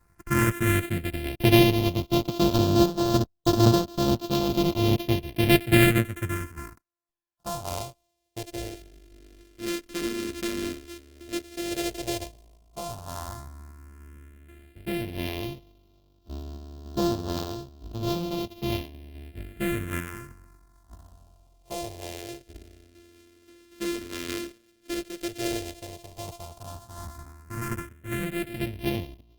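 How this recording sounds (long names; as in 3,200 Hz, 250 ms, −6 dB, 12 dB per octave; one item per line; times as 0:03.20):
a buzz of ramps at a fixed pitch in blocks of 128 samples
phaser sweep stages 4, 0.073 Hz, lowest notch 130–2,100 Hz
sample-and-hold tremolo
Opus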